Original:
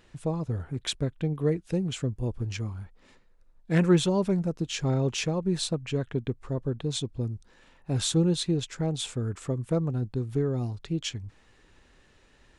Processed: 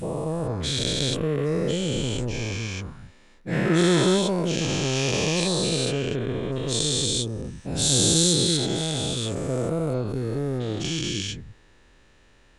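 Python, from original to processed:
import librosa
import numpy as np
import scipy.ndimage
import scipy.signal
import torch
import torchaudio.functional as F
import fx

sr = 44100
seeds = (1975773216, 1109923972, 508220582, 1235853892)

y = fx.spec_dilate(x, sr, span_ms=480)
y = fx.high_shelf(y, sr, hz=3900.0, db=8.0, at=(6.52, 8.57))
y = y * 10.0 ** (-3.5 / 20.0)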